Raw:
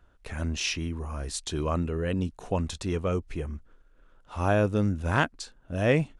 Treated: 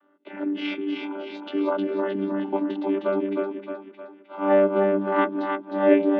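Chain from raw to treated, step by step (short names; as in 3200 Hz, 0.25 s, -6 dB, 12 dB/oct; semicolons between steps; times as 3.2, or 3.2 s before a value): chord vocoder bare fifth, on G3; elliptic band-pass 270–3300 Hz, stop band 50 dB; split-band echo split 440 Hz, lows 0.164 s, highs 0.31 s, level -4.5 dB; gain +8 dB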